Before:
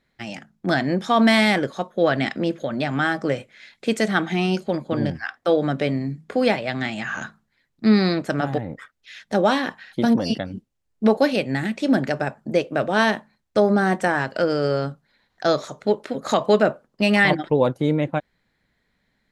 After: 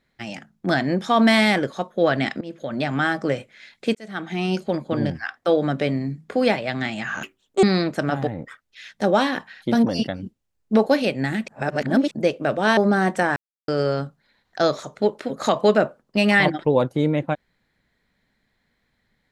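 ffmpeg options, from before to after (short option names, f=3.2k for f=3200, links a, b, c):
-filter_complex "[0:a]asplit=10[a][b][c][d][e][f][g][h][i][j];[a]atrim=end=2.41,asetpts=PTS-STARTPTS,afade=t=out:st=2.406:d=0.004:c=hsin:silence=0.1[k];[b]atrim=start=2.41:end=3.95,asetpts=PTS-STARTPTS,afade=t=in:d=0.38:silence=0.1,afade=t=out:st=1.536:d=0.004:c=hsin[l];[c]atrim=start=3.95:end=7.234,asetpts=PTS-STARTPTS,afade=t=in:d=0.65[m];[d]atrim=start=7.23:end=7.94,asetpts=PTS-STARTPTS,asetrate=78057,aresample=44100[n];[e]atrim=start=7.936:end=11.792[o];[f]atrim=start=11.788:end=12.422,asetpts=PTS-STARTPTS,areverse[p];[g]atrim=start=12.418:end=13.082[q];[h]atrim=start=13.618:end=14.21,asetpts=PTS-STARTPTS,afade=t=out:st=0.588:d=0.004:c=hsin[r];[i]atrim=start=14.21:end=14.53,asetpts=PTS-STARTPTS,volume=0[s];[j]atrim=start=14.53,asetpts=PTS-STARTPTS,afade=t=in:d=0.004:c=hsin[t];[k][l][m]concat=n=3:v=0:a=1[u];[u][n]acrossfade=d=0.004:c1=hsin:c2=hsin[v];[v][o]acrossfade=d=0.004:c1=hsin:c2=hsin[w];[w][p]acrossfade=d=0.004:c1=hsin:c2=hsin[x];[x][q]acrossfade=d=0.004:c1=hsin:c2=hsin[y];[r][s][t]concat=n=3:v=0:a=1[z];[y][z]acrossfade=d=0.004:c1=hsin:c2=hsin"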